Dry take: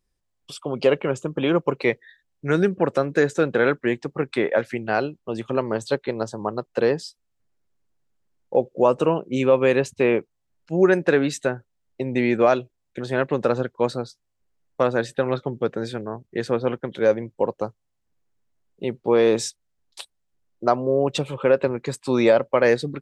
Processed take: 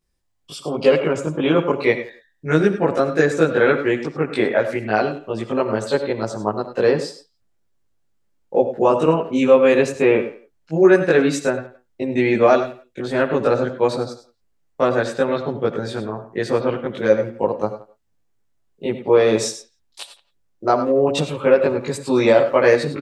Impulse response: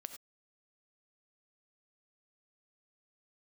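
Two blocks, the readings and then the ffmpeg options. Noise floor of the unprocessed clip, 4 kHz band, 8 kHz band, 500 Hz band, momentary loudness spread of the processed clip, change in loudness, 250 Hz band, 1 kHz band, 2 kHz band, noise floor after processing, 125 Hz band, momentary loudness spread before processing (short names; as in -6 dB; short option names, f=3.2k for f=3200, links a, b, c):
-75 dBFS, +3.5 dB, +4.0 dB, +4.0 dB, 13 LU, +3.5 dB, +3.5 dB, +4.0 dB, +3.5 dB, -66 dBFS, +2.5 dB, 13 LU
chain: -filter_complex "[0:a]asplit=2[a][b];[b]adelay=170,highpass=300,lowpass=3.4k,asoftclip=type=hard:threshold=-13dB,volume=-21dB[c];[a][c]amix=inputs=2:normalize=0,asplit=2[d][e];[1:a]atrim=start_sample=2205,adelay=19[f];[e][f]afir=irnorm=-1:irlink=0,volume=8.5dB[g];[d][g]amix=inputs=2:normalize=0,volume=-2dB"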